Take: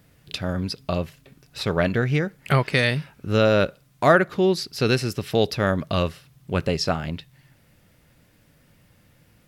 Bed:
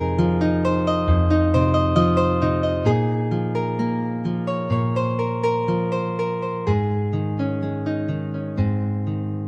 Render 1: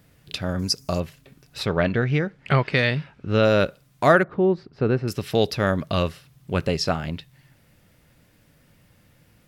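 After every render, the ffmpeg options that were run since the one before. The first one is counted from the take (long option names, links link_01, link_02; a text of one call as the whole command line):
ffmpeg -i in.wav -filter_complex "[0:a]asettb=1/sr,asplit=3[link_01][link_02][link_03];[link_01]atrim=end=0.594[link_04];[link_02]atrim=start=0.59:end=1,asetpts=PTS-STARTPTS,afade=type=in:duration=0.004:curve=qsin,afade=type=out:start_time=0.406:duration=0.004:curve=qsin,highshelf=frequency=4600:width_type=q:width=3:gain=9[link_05];[link_03]atrim=start=0.996[link_06];[link_04][link_05]acrossfade=duration=0.004:curve1=hsin:curve2=qsin[link_07];[link_07][link_06]acrossfade=duration=0.004:curve1=qsin:curve2=hsin,asettb=1/sr,asplit=3[link_08][link_09][link_10];[link_08]atrim=end=1.664[link_11];[link_09]atrim=start=1.66:end=3.43,asetpts=PTS-STARTPTS,afade=type=in:duration=0.004:curve=qsin,afade=type=out:start_time=1.766:duration=0.004:curve=qsin,lowpass=4200[link_12];[link_10]atrim=start=3.426[link_13];[link_11][link_12]acrossfade=duration=0.004:curve1=hsin:curve2=qsin[link_14];[link_14][link_13]acrossfade=duration=0.004:curve1=qsin:curve2=hsin,asettb=1/sr,asplit=3[link_15][link_16][link_17];[link_15]atrim=end=4.234[link_18];[link_16]atrim=start=4.23:end=5.08,asetpts=PTS-STARTPTS,afade=type=in:duration=0.004:curve=qsin,afade=type=out:start_time=0.846:duration=0.004:curve=qsin,lowpass=1200[link_19];[link_17]atrim=start=5.076[link_20];[link_18][link_19]acrossfade=duration=0.004:curve1=hsin:curve2=qsin[link_21];[link_21][link_20]acrossfade=duration=0.004:curve1=qsin:curve2=hsin" out.wav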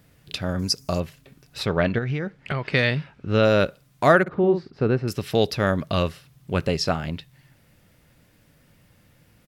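ffmpeg -i in.wav -filter_complex "[0:a]asettb=1/sr,asplit=3[link_01][link_02][link_03];[link_01]atrim=end=1.984[link_04];[link_02]atrim=start=1.98:end=2.69,asetpts=PTS-STARTPTS,afade=type=in:duration=0.004:curve=qsin,afade=type=out:start_time=0.706:duration=0.004:curve=qsin,acompressor=threshold=-22dB:ratio=6:attack=3.2:release=140:knee=1:detection=peak[link_05];[link_03]atrim=start=2.686[link_06];[link_04][link_05]acrossfade=duration=0.004:curve1=hsin:curve2=qsin[link_07];[link_07][link_06]acrossfade=duration=0.004:curve1=qsin:curve2=hsin,asplit=3[link_08][link_09][link_10];[link_08]afade=type=out:start_time=4.26:duration=0.02[link_11];[link_09]asplit=2[link_12][link_13];[link_13]adelay=50,volume=-7dB[link_14];[link_12][link_14]amix=inputs=2:normalize=0,afade=type=in:start_time=4.26:duration=0.02,afade=type=out:start_time=4.85:duration=0.02[link_15];[link_10]afade=type=in:start_time=4.85:duration=0.02[link_16];[link_11][link_15][link_16]amix=inputs=3:normalize=0" out.wav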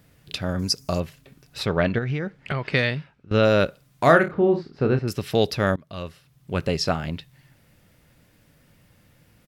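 ffmpeg -i in.wav -filter_complex "[0:a]asettb=1/sr,asplit=3[link_01][link_02][link_03];[link_01]atrim=end=4.034[link_04];[link_02]atrim=start=4.03:end=4.99,asetpts=PTS-STARTPTS,afade=type=in:duration=0.004:curve=qsin,afade=type=out:start_time=0.956:duration=0.004:curve=qsin,asplit=2[link_05][link_06];[link_06]adelay=30,volume=-7.5dB[link_07];[link_05][link_07]amix=inputs=2:normalize=0,atrim=end_sample=42336[link_08];[link_03]atrim=start=4.986[link_09];[link_04][link_08]acrossfade=duration=0.004:curve1=hsin:curve2=qsin[link_10];[link_10][link_09]acrossfade=duration=0.004:curve1=qsin:curve2=hsin,asplit=3[link_11][link_12][link_13];[link_11]atrim=end=3.31,asetpts=PTS-STARTPTS,afade=type=out:start_time=2.73:duration=0.58:silence=0.105925[link_14];[link_12]atrim=start=3.31:end=5.76,asetpts=PTS-STARTPTS,afade=type=in:duration=0.004:curve=hsin:silence=0.105925,afade=type=out:start_time=2.446:duration=0.004:curve=hsin:silence=0.0630957[link_15];[link_13]atrim=start=5.76,asetpts=PTS-STARTPTS,afade=type=in:duration=1.02:silence=0.0630957[link_16];[link_14][link_15][link_16]concat=n=3:v=0:a=1" out.wav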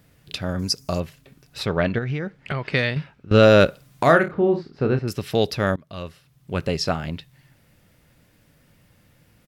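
ffmpeg -i in.wav -filter_complex "[0:a]asettb=1/sr,asplit=3[link_01][link_02][link_03];[link_01]atrim=end=2.964[link_04];[link_02]atrim=start=2.96:end=4.03,asetpts=PTS-STARTPTS,afade=type=in:duration=0.004:curve=qsin,afade=type=out:start_time=1.066:duration=0.004:curve=qsin,acontrast=58[link_05];[link_03]atrim=start=4.026[link_06];[link_04][link_05]acrossfade=duration=0.004:curve1=hsin:curve2=qsin[link_07];[link_07][link_06]acrossfade=duration=0.004:curve1=qsin:curve2=hsin" out.wav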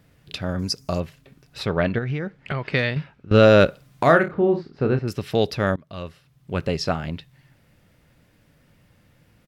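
ffmpeg -i in.wav -af "highshelf=frequency=5700:gain=-6.5" out.wav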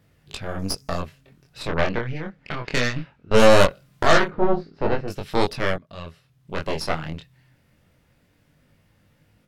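ffmpeg -i in.wav -af "aeval=exprs='0.668*(cos(1*acos(clip(val(0)/0.668,-1,1)))-cos(1*PI/2))+0.211*(cos(6*acos(clip(val(0)/0.668,-1,1)))-cos(6*PI/2))':channel_layout=same,flanger=delay=19.5:depth=5.9:speed=0.22" out.wav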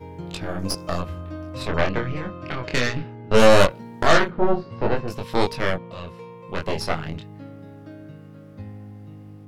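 ffmpeg -i in.wav -i bed.wav -filter_complex "[1:a]volume=-16.5dB[link_01];[0:a][link_01]amix=inputs=2:normalize=0" out.wav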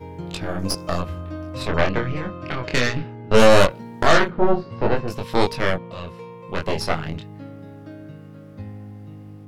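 ffmpeg -i in.wav -af "volume=2dB,alimiter=limit=-2dB:level=0:latency=1" out.wav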